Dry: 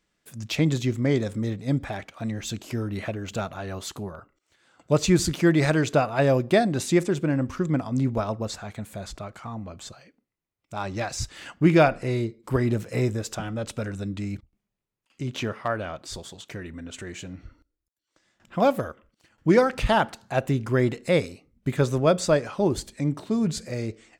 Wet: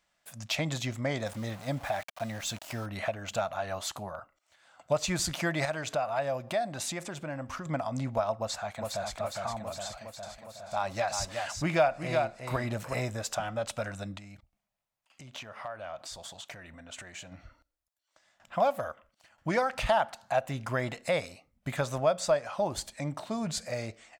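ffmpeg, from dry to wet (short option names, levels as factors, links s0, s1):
-filter_complex "[0:a]asettb=1/sr,asplit=3[s0][s1][s2];[s0]atrim=end=1.264[s3];[s1]atrim=start=1.26:end=2.86,asetpts=PTS-STARTPTS,afade=t=in:d=0.004:c=qsin,afade=t=out:st=1.596:d=0.004:c=qsin,aeval=exprs='val(0)*gte(abs(val(0)),0.00841)':c=same[s4];[s2]atrim=start=2.856[s5];[s3][s4]acrossfade=d=0.004:c1=hsin:c2=qsin[s6];[s6][s5]acrossfade=d=0.004:c1=qsin:c2=hsin,asettb=1/sr,asplit=3[s7][s8][s9];[s7]atrim=end=5.654[s10];[s8]atrim=start=5.65:end=7.66,asetpts=PTS-STARTPTS,afade=t=in:d=0.004:c=qsin,afade=t=out:st=2.006:d=0.004:c=qsin,acompressor=threshold=0.0282:ratio=2:attack=3.2:release=140:knee=1:detection=peak[s11];[s9]atrim=start=7.656[s12];[s10][s11]acrossfade=d=0.004:c1=hsin:c2=qsin[s13];[s13][s12]acrossfade=d=0.004:c1=qsin:c2=hsin,asplit=2[s14][s15];[s15]afade=t=in:st=8.36:d=0.01,afade=t=out:st=9.16:d=0.01,aecho=0:1:410|820|1230|1640|2050|2460|2870|3280|3690|4100|4510|4920:0.630957|0.44167|0.309169|0.216418|0.151493|0.106045|0.0742315|0.0519621|0.0363734|0.0254614|0.017823|0.0124761[s16];[s14][s16]amix=inputs=2:normalize=0,asettb=1/sr,asplit=3[s17][s18][s19];[s17]atrim=end=9.864[s20];[s18]atrim=start=9.86:end=12.94,asetpts=PTS-STARTPTS,afade=t=in:d=0.004:c=qsin,afade=t=out:st=3.076:d=0.004:c=qsin,aecho=1:1:367:0.422,atrim=end_sample=135828[s21];[s19]atrim=start=12.936[s22];[s20][s21]acrossfade=d=0.004:c1=hsin:c2=qsin[s23];[s23][s22]acrossfade=d=0.004:c1=qsin:c2=hsin,asettb=1/sr,asplit=3[s24][s25][s26];[s24]atrim=end=14.174[s27];[s25]atrim=start=14.17:end=17.32,asetpts=PTS-STARTPTS,afade=t=in:d=0.004:c=qsin,afade=t=out:st=3.146:d=0.004:c=qsin,acompressor=threshold=0.0126:ratio=6:attack=3.2:release=140:knee=1:detection=peak[s28];[s26]atrim=start=17.316[s29];[s27][s28]acrossfade=d=0.004:c1=hsin:c2=qsin[s30];[s30][s29]acrossfade=d=0.004:c1=qsin:c2=hsin,lowshelf=f=510:t=q:w=3:g=-7.5,acompressor=threshold=0.0398:ratio=2"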